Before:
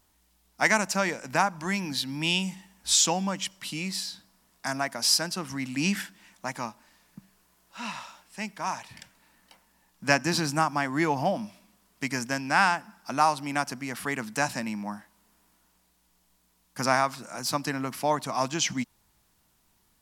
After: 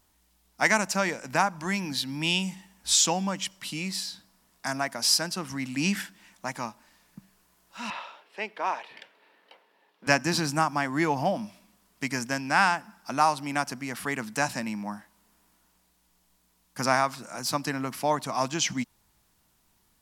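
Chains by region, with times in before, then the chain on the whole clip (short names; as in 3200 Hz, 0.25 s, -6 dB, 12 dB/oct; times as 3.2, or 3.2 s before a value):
7.9–10.07 resonant high-pass 430 Hz, resonance Q 3.4 + resonant high shelf 4900 Hz -13.5 dB, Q 1.5
whole clip: dry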